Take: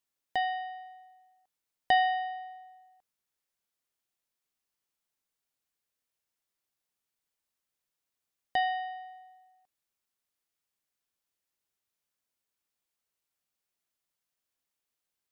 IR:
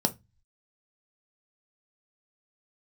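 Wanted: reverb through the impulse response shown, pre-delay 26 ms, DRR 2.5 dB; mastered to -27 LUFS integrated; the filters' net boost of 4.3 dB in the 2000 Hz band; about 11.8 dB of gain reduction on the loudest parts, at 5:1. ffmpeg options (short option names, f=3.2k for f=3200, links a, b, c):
-filter_complex "[0:a]equalizer=f=2k:t=o:g=4.5,acompressor=threshold=-31dB:ratio=5,asplit=2[a][b];[1:a]atrim=start_sample=2205,adelay=26[c];[b][c]afir=irnorm=-1:irlink=0,volume=-11dB[d];[a][d]amix=inputs=2:normalize=0,volume=11.5dB"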